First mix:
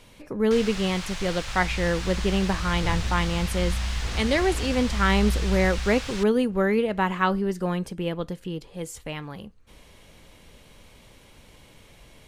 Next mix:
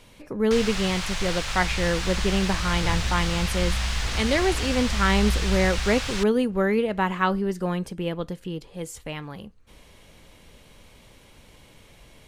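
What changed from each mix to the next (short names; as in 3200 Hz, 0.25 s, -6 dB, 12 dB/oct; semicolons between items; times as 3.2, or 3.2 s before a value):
first sound +5.0 dB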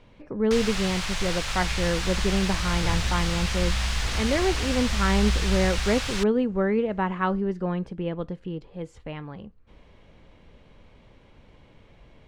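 speech: add tape spacing loss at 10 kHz 27 dB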